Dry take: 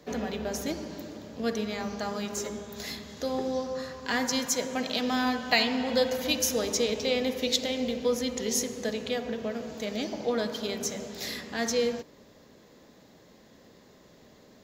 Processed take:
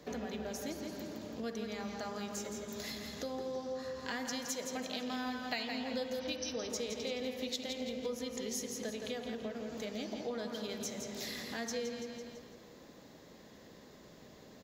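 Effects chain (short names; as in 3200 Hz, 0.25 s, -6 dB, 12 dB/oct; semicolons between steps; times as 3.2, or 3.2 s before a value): 6.19–6.7 brick-wall FIR low-pass 6200 Hz; on a send: feedback echo 0.167 s, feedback 40%, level -7.5 dB; on the sum: compressor 2.5:1, threshold -40 dBFS, peak gain reduction 14.5 dB; gain -1 dB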